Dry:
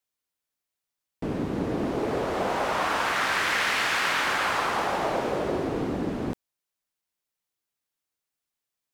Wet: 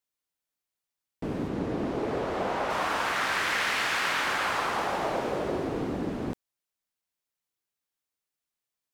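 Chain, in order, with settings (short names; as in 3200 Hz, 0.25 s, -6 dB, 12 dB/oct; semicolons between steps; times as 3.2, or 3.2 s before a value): 1.47–2.69 high shelf 12000 Hz -> 6600 Hz -9.5 dB; gain -2.5 dB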